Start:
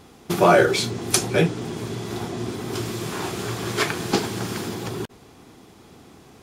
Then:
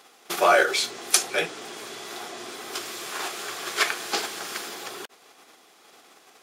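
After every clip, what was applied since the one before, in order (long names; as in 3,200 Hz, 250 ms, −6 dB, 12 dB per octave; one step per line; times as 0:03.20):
high-pass filter 710 Hz 12 dB per octave
parametric band 940 Hz −7 dB 0.21 octaves
in parallel at −3 dB: output level in coarse steps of 11 dB
on the sum: level −2 dB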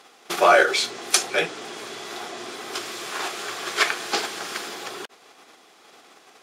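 high-shelf EQ 11,000 Hz −11.5 dB
level +3 dB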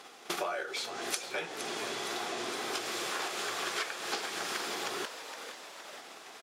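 downward compressor 16 to 1, threshold −32 dBFS, peak gain reduction 22 dB
echo with shifted repeats 465 ms, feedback 61%, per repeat +100 Hz, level −10 dB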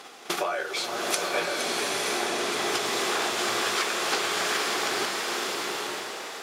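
slow-attack reverb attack 930 ms, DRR 0 dB
level +6 dB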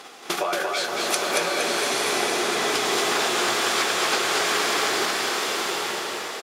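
single-tap delay 229 ms −3 dB
level +2.5 dB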